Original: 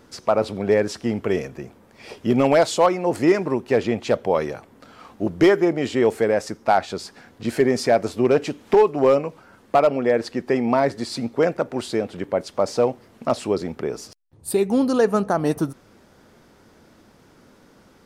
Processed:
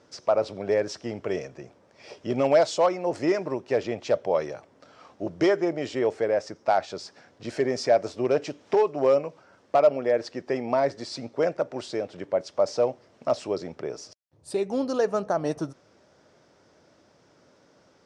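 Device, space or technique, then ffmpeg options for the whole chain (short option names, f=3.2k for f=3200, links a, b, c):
car door speaker: -filter_complex "[0:a]highpass=94,equalizer=f=220:t=q:w=4:g=-7,equalizer=f=600:t=q:w=4:g=7,equalizer=f=5.5k:t=q:w=4:g=6,lowpass=f=7.8k:w=0.5412,lowpass=f=7.8k:w=1.3066,asettb=1/sr,asplit=3[a][b][c];[a]atrim=end=5.994[d];[b]atrim=start=5.99:end=6.56,asetpts=PTS-STARTPTS,afade=t=in:d=0.004:c=qsin,afade=t=out:st=0.566:d=0.004:c=qsin,highshelf=f=5.8k:g=-7.5[e];[c]atrim=start=6.556[f];[d][e]acrossfade=d=0.004:c1=hsin:c2=qsin[g];[g][f]acrossfade=d=0.004:c1=qsin:c2=hsin,volume=-7dB"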